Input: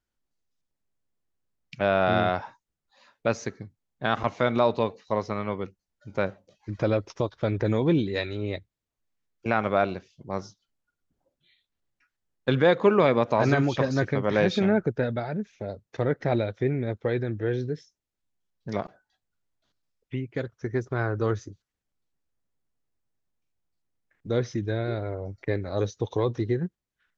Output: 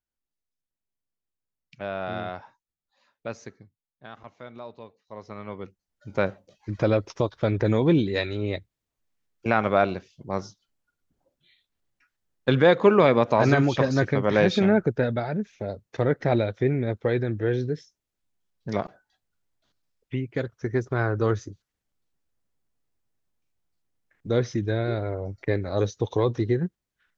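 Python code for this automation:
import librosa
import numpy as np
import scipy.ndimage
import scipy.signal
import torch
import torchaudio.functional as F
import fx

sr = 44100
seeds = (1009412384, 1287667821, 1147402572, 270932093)

y = fx.gain(x, sr, db=fx.line((3.51, -9.0), (4.13, -18.5), (5.03, -18.5), (5.3, -9.5), (6.11, 2.5)))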